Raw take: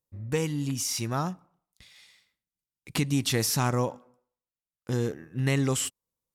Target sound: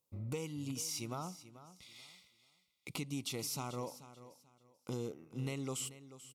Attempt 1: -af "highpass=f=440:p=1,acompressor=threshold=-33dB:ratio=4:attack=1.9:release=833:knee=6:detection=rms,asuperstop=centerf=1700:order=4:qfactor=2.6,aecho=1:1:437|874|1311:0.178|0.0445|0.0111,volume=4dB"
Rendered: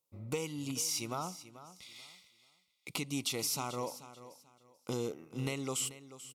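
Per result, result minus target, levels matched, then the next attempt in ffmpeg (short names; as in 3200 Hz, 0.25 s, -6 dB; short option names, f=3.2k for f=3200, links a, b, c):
compressor: peak gain reduction -5.5 dB; 125 Hz band -4.5 dB
-af "highpass=f=440:p=1,acompressor=threshold=-40.5dB:ratio=4:attack=1.9:release=833:knee=6:detection=rms,asuperstop=centerf=1700:order=4:qfactor=2.6,aecho=1:1:437|874|1311:0.178|0.0445|0.0111,volume=4dB"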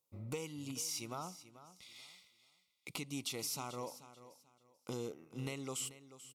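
125 Hz band -4.0 dB
-af "highpass=f=170:p=1,acompressor=threshold=-40.5dB:ratio=4:attack=1.9:release=833:knee=6:detection=rms,asuperstop=centerf=1700:order=4:qfactor=2.6,aecho=1:1:437|874|1311:0.178|0.0445|0.0111,volume=4dB"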